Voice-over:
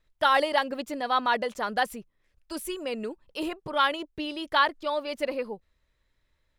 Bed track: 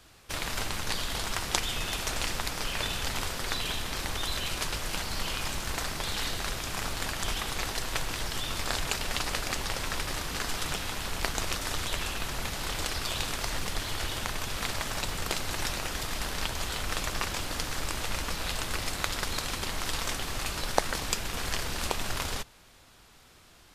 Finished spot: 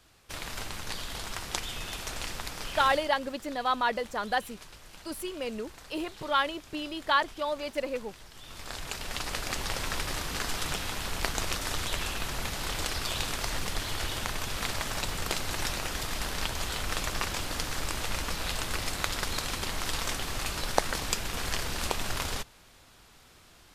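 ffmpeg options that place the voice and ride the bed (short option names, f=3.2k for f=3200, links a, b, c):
-filter_complex "[0:a]adelay=2550,volume=-2.5dB[a];[1:a]volume=12dB,afade=t=out:st=2.87:d=0.22:silence=0.251189,afade=t=in:st=8.35:d=1.39:silence=0.141254[b];[a][b]amix=inputs=2:normalize=0"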